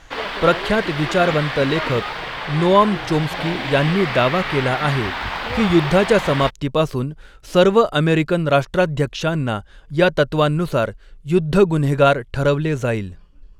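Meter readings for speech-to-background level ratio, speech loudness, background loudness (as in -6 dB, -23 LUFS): 6.5 dB, -19.0 LUFS, -25.5 LUFS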